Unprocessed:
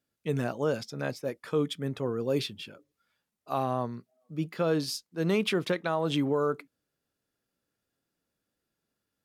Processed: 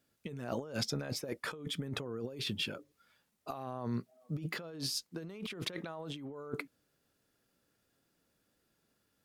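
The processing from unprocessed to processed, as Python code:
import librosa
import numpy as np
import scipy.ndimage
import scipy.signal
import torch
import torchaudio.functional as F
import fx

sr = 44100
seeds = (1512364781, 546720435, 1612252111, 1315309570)

y = fx.over_compress(x, sr, threshold_db=-39.0, ratio=-1.0)
y = F.gain(torch.from_numpy(y), -1.5).numpy()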